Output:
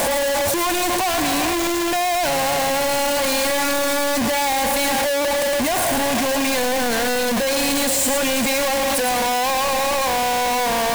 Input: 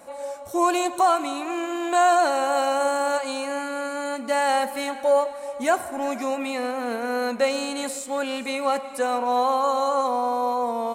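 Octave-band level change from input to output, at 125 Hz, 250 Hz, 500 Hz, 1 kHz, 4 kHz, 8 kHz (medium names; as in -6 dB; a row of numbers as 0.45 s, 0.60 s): no reading, +5.5 dB, +3.0 dB, +1.5 dB, +12.0 dB, +13.5 dB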